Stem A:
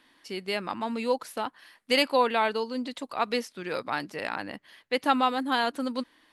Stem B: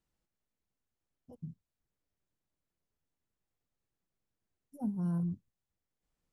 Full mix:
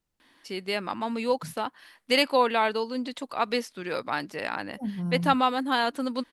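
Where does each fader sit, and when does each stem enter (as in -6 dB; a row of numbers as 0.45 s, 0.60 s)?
+1.0 dB, +2.5 dB; 0.20 s, 0.00 s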